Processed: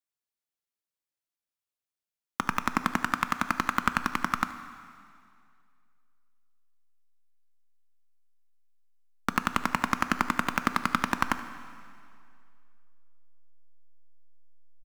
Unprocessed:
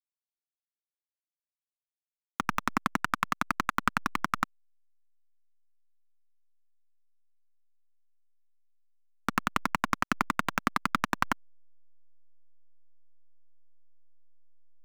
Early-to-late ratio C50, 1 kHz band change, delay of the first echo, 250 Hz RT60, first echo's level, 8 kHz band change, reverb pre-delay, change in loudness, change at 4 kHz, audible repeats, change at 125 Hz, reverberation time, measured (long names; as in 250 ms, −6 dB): 11.5 dB, +1.5 dB, 76 ms, 2.3 s, −20.0 dB, +2.0 dB, 5 ms, +1.5 dB, +2.0 dB, 1, +2.0 dB, 2.3 s